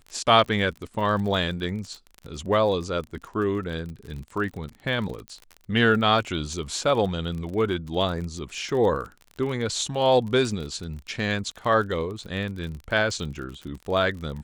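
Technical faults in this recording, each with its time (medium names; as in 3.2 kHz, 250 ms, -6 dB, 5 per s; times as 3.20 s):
crackle 34 per s -32 dBFS
5.28 s: pop -24 dBFS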